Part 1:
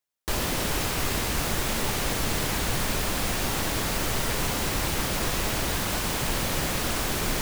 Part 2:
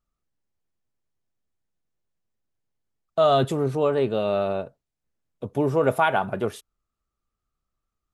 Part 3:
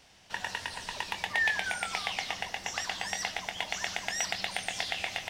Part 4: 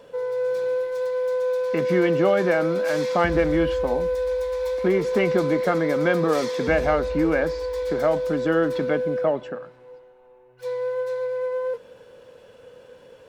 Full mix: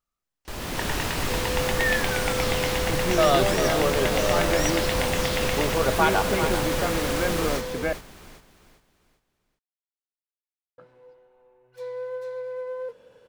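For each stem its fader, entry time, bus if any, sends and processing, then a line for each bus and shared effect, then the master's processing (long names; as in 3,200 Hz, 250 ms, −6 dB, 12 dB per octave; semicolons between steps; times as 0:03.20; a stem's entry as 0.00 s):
−9.5 dB, 0.20 s, no send, echo send −9 dB, high-shelf EQ 5,400 Hz −5.5 dB; automatic gain control gain up to 10 dB
+1.0 dB, 0.00 s, no send, echo send −9.5 dB, low-shelf EQ 460 Hz −10 dB
+2.0 dB, 0.45 s, no send, no echo send, no processing
−6.5 dB, 1.15 s, muted 0:07.93–0:10.78, no send, no echo send, no processing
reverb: not used
echo: repeating echo 396 ms, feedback 33%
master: no processing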